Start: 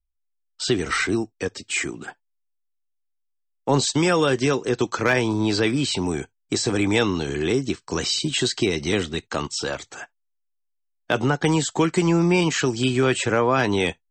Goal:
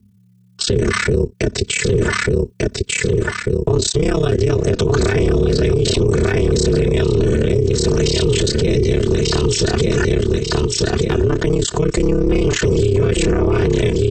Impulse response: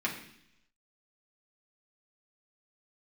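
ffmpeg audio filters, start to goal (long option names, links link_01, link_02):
-filter_complex "[0:a]tremolo=f=34:d=1,aecho=1:1:3.7:0.86,aecho=1:1:1193|2386|3579:0.335|0.0703|0.0148,asettb=1/sr,asplit=3[link_01][link_02][link_03];[link_01]atrim=end=4.504[link_04];[link_02]atrim=start=4.5:end=6.89,asetpts=PTS-STARTPTS,afade=type=in:duration=0.004:curve=qsin,afade=type=out:start_time=2.386:duration=0.004:curve=qsin,acontrast=77[link_05];[link_03]atrim=start=6.886[link_06];[link_04][link_05]acrossfade=duration=0.004:curve1=hsin:curve2=qsin[link_07];[link_07][link_06]acrossfade=duration=0.004:curve1=qsin:curve2=hsin,highpass=frequency=43:width=0.5412,highpass=frequency=43:width=1.3066,acompressor=threshold=-31dB:ratio=5,lowshelf=frequency=360:width_type=q:width=1.5:gain=13.5,aeval=exprs='val(0)*sin(2*PI*150*n/s)':channel_layout=same,alimiter=level_in=31dB:limit=-1dB:release=50:level=0:latency=1,volume=-6dB"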